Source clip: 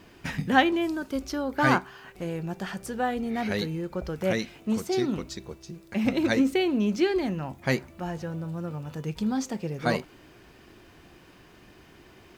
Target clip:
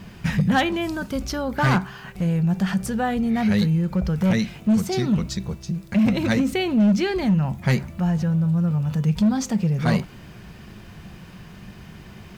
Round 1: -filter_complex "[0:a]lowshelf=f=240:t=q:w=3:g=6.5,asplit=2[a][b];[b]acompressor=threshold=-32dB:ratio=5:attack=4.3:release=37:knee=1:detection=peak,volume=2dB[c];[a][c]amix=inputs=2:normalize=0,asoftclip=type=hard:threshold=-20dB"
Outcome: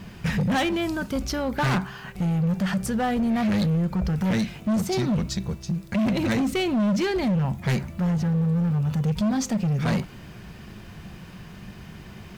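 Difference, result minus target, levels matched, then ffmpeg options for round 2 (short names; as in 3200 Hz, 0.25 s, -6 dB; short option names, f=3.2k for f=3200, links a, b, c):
hard clip: distortion +9 dB
-filter_complex "[0:a]lowshelf=f=240:t=q:w=3:g=6.5,asplit=2[a][b];[b]acompressor=threshold=-32dB:ratio=5:attack=4.3:release=37:knee=1:detection=peak,volume=2dB[c];[a][c]amix=inputs=2:normalize=0,asoftclip=type=hard:threshold=-13.5dB"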